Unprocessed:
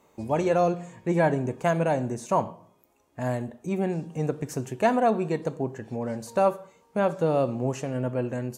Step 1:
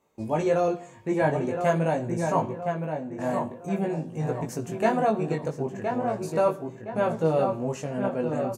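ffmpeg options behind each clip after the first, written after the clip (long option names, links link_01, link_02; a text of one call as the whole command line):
ffmpeg -i in.wav -filter_complex "[0:a]agate=range=-8dB:threshold=-55dB:ratio=16:detection=peak,asplit=2[link_01][link_02];[link_02]adelay=1017,lowpass=frequency=2500:poles=1,volume=-5.5dB,asplit=2[link_03][link_04];[link_04]adelay=1017,lowpass=frequency=2500:poles=1,volume=0.41,asplit=2[link_05][link_06];[link_06]adelay=1017,lowpass=frequency=2500:poles=1,volume=0.41,asplit=2[link_07][link_08];[link_08]adelay=1017,lowpass=frequency=2500:poles=1,volume=0.41,asplit=2[link_09][link_10];[link_10]adelay=1017,lowpass=frequency=2500:poles=1,volume=0.41[link_11];[link_01][link_03][link_05][link_07][link_09][link_11]amix=inputs=6:normalize=0,flanger=delay=18:depth=2.4:speed=0.44,volume=2dB" out.wav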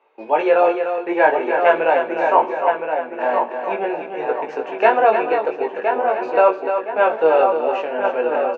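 ffmpeg -i in.wav -af "highpass=frequency=370:width=0.5412,highpass=frequency=370:width=1.3066,equalizer=frequency=460:width_type=q:width=4:gain=3,equalizer=frequency=860:width_type=q:width=4:gain=7,equalizer=frequency=1500:width_type=q:width=4:gain=7,equalizer=frequency=2600:width_type=q:width=4:gain=8,lowpass=frequency=3400:width=0.5412,lowpass=frequency=3400:width=1.3066,aecho=1:1:299:0.422,volume=7dB" out.wav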